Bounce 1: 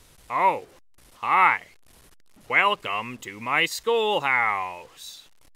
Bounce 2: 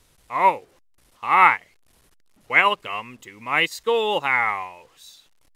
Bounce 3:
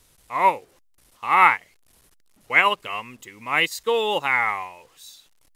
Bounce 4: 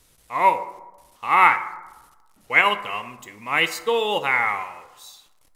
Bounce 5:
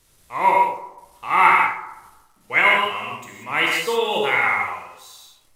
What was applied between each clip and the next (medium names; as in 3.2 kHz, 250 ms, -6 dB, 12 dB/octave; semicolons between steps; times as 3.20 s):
upward expansion 1.5:1, over -35 dBFS; trim +4.5 dB
treble shelf 6 kHz +6.5 dB; trim -1 dB
plate-style reverb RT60 1.1 s, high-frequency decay 0.4×, DRR 9.5 dB
gated-style reverb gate 210 ms flat, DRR -2.5 dB; trim -2.5 dB